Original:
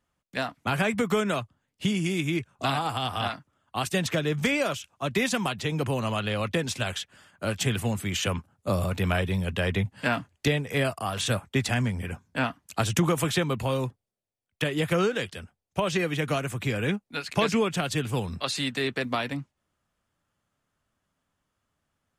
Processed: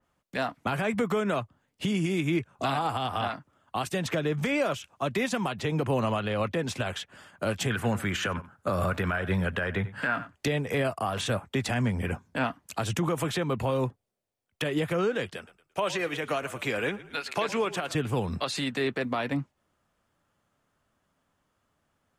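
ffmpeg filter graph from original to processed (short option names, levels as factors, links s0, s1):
-filter_complex "[0:a]asettb=1/sr,asplit=3[s0][s1][s2];[s0]atrim=end=7.704[s3];[s1]atrim=start=7.7:end=10.35,asetpts=PTS-STARTPTS,afade=t=in:d=0.004:c=qsin,afade=t=out:st=2.646:d=0.004:c=qsin,equalizer=f=1500:t=o:w=0.74:g=11.5,aecho=1:1:91:0.0944,atrim=end_sample=116865[s4];[s2]atrim=start=10.346[s5];[s3][s4]acrossfade=d=0.004:c1=hsin:c2=qsin[s6];[s6][s5]acrossfade=d=0.004:c1=qsin:c2=hsin,asettb=1/sr,asplit=3[s7][s8][s9];[s7]atrim=end=15.364[s10];[s8]atrim=start=15.36:end=17.95,asetpts=PTS-STARTPTS,afade=t=in:d=0.004:c=qsin,afade=t=out:st=2.586:d=0.004:c=qsin,highpass=f=590:p=1,asplit=4[s11][s12][s13][s14];[s12]adelay=111,afreqshift=-42,volume=0.133[s15];[s13]adelay=222,afreqshift=-84,volume=0.0495[s16];[s14]adelay=333,afreqshift=-126,volume=0.0182[s17];[s11][s15][s16][s17]amix=inputs=4:normalize=0,atrim=end_sample=114219[s18];[s9]atrim=start=17.946[s19];[s10][s18]acrossfade=d=0.004:c1=hsin:c2=qsin[s20];[s20][s19]acrossfade=d=0.004:c1=qsin:c2=hsin,equalizer=f=580:w=0.35:g=5,alimiter=limit=0.106:level=0:latency=1:release=216,adynamicequalizer=threshold=0.00631:dfrequency=2800:dqfactor=0.7:tfrequency=2800:tqfactor=0.7:attack=5:release=100:ratio=0.375:range=2.5:mode=cutabove:tftype=highshelf,volume=1.19"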